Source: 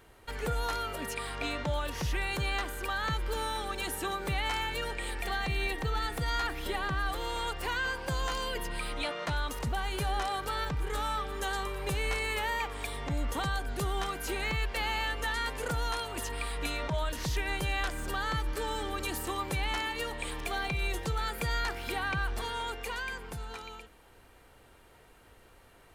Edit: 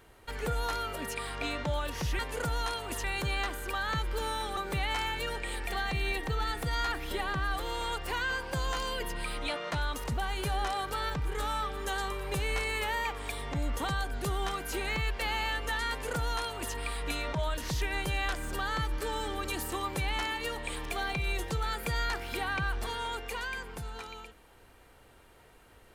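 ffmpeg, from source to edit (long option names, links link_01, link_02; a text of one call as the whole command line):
ffmpeg -i in.wav -filter_complex "[0:a]asplit=4[link_01][link_02][link_03][link_04];[link_01]atrim=end=2.192[link_05];[link_02]atrim=start=15.448:end=16.302[link_06];[link_03]atrim=start=2.188:end=3.722[link_07];[link_04]atrim=start=4.118[link_08];[link_05][link_06]acrossfade=duration=0.004:curve1=hsin:curve2=hsin[link_09];[link_09][link_07]acrossfade=duration=0.004:curve1=hsin:curve2=hsin[link_10];[link_10][link_08]acrossfade=duration=0.004:curve1=hsin:curve2=hsin" out.wav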